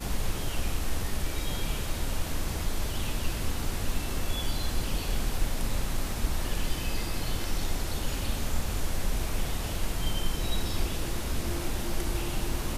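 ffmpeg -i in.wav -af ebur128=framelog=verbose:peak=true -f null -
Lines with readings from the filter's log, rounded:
Integrated loudness:
  I:         -33.1 LUFS
  Threshold: -43.1 LUFS
Loudness range:
  LRA:         0.7 LU
  Threshold: -53.0 LUFS
  LRA low:   -33.5 LUFS
  LRA high:  -32.8 LUFS
True peak:
  Peak:      -14.2 dBFS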